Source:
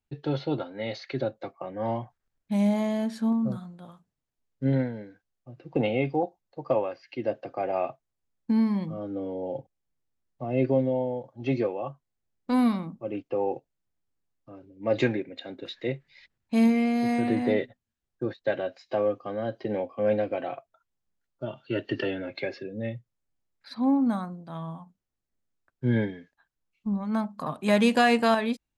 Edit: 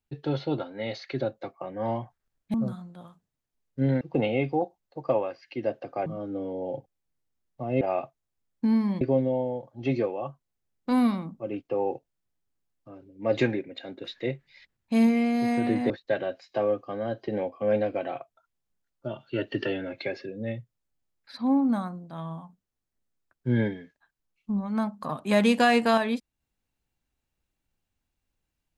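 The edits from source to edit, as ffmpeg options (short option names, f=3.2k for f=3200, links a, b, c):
-filter_complex "[0:a]asplit=7[a][b][c][d][e][f][g];[a]atrim=end=2.542[h];[b]atrim=start=3.378:end=4.852[i];[c]atrim=start=5.618:end=7.672[j];[d]atrim=start=8.868:end=10.622[k];[e]atrim=start=7.668:end=8.872[l];[f]atrim=start=10.618:end=17.512[m];[g]atrim=start=18.268[n];[h][i]acrossfade=d=0.004:c1=hsin:c2=hsin[o];[o][j]acrossfade=d=0.004:c1=hsin:c2=hsin[p];[p][k]acrossfade=d=0.004:c1=hsin:c2=hsin[q];[q][l]acrossfade=d=0.004:c1=hsin:c2=hsin[r];[r][m]acrossfade=d=0.004:c1=hsin:c2=hsin[s];[s][n]acrossfade=d=0.004:c1=hsin:c2=hsin"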